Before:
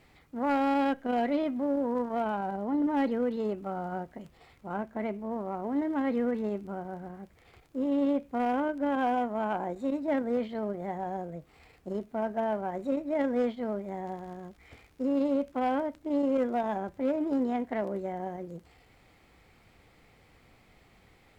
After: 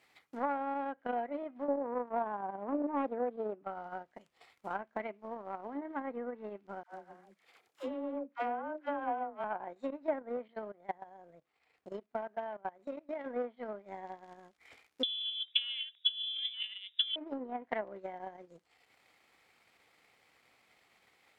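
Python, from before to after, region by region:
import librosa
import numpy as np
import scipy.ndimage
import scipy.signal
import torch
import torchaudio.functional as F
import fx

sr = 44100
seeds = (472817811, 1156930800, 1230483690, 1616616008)

y = fx.chain(x, sr, fx.highpass(hz=220.0, slope=12),
    fx.low_shelf(hz=460.0, db=9.0),
    fx.doppler_dist(depth_ms=0.27), at=(1.68, 3.63))
y = fx.chain(y, sr, fx.highpass(hz=170.0, slope=12),
    fx.dispersion(late='lows', ms=103.0, hz=650.0), at=(6.83, 9.44))
y = fx.chain(y, sr, fx.lowpass(hz=3700.0, slope=6),
    fx.level_steps(step_db=11), at=(10.48, 13.26))
y = fx.chain(y, sr, fx.peak_eq(hz=2900.0, db=-8.5, octaves=1.5),
    fx.over_compress(threshold_db=-32.0, ratio=-1.0),
    fx.freq_invert(carrier_hz=3700), at=(15.03, 17.16))
y = fx.env_lowpass_down(y, sr, base_hz=1300.0, full_db=-25.0)
y = fx.highpass(y, sr, hz=1000.0, slope=6)
y = fx.transient(y, sr, attack_db=10, sustain_db=-8)
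y = y * librosa.db_to_amplitude(-3.0)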